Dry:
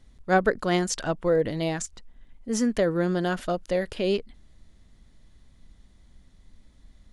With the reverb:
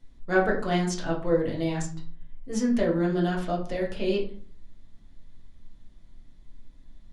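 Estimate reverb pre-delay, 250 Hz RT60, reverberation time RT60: 6 ms, 0.65 s, 0.45 s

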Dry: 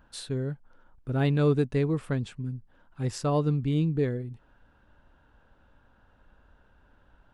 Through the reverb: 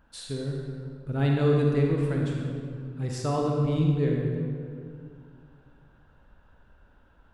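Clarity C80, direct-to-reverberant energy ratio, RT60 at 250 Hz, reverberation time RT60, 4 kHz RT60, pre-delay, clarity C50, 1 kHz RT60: 1.5 dB, −1.0 dB, 2.6 s, 2.3 s, 1.4 s, 34 ms, 0.0 dB, 2.1 s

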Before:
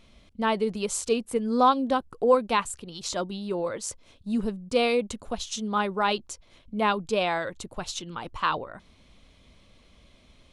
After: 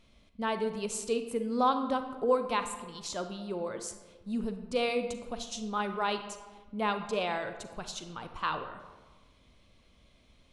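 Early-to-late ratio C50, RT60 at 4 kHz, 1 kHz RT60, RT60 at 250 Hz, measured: 9.0 dB, 0.75 s, 1.3 s, 1.5 s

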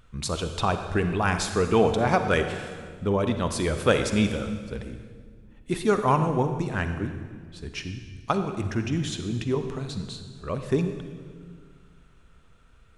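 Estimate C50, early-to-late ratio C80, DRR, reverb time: 7.5 dB, 9.0 dB, 7.5 dB, 1.8 s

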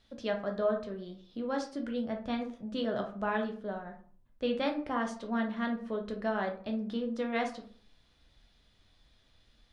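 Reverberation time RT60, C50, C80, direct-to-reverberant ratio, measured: 0.45 s, 9.0 dB, 15.0 dB, 2.5 dB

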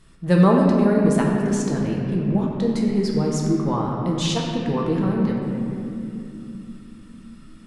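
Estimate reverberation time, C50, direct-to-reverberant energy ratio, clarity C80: 3.0 s, 0.5 dB, −2.0 dB, 1.5 dB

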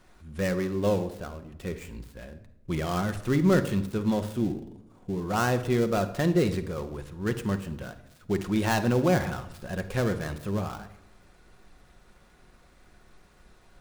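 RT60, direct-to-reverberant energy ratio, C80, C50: 0.80 s, 8.0 dB, 15.5 dB, 12.0 dB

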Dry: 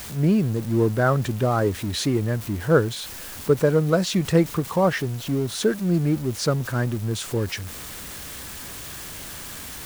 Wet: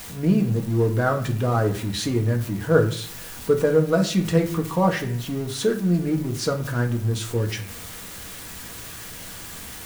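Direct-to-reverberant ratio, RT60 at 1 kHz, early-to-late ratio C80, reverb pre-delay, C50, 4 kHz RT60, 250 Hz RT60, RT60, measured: 2.5 dB, 0.50 s, 15.0 dB, 4 ms, 11.5 dB, 0.35 s, 0.75 s, 0.50 s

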